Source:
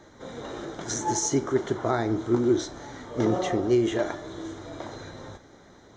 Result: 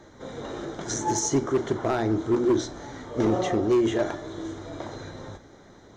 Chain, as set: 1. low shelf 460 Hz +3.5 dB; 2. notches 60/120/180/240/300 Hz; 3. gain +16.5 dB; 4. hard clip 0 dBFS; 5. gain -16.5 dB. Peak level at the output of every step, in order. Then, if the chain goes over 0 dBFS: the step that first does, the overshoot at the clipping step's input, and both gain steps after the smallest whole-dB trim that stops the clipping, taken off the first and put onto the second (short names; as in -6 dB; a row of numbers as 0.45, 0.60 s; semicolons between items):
-8.5, -9.0, +7.5, 0.0, -16.5 dBFS; step 3, 7.5 dB; step 3 +8.5 dB, step 5 -8.5 dB